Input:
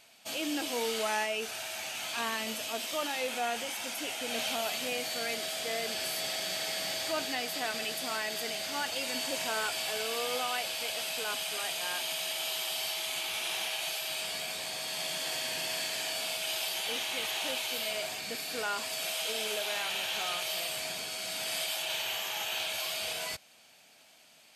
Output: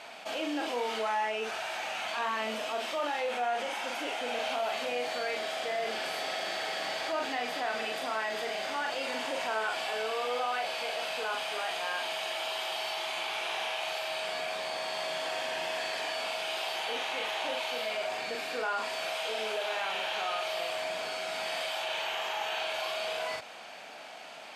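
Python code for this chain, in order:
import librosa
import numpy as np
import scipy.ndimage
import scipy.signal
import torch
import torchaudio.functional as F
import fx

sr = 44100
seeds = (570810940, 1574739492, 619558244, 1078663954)

y = fx.bandpass_q(x, sr, hz=860.0, q=0.74)
y = fx.doubler(y, sr, ms=41.0, db=-4.0)
y = fx.env_flatten(y, sr, amount_pct=50)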